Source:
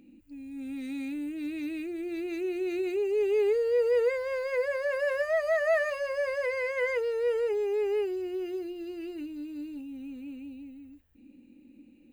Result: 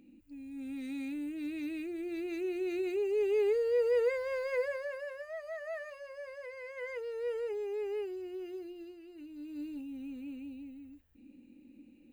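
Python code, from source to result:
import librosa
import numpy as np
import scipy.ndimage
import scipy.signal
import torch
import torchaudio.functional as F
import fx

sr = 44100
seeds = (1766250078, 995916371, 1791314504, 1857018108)

y = fx.gain(x, sr, db=fx.line((4.6, -3.5), (5.15, -15.0), (6.56, -15.0), (7.24, -8.0), (8.82, -8.0), (9.03, -15.0), (9.62, -2.0)))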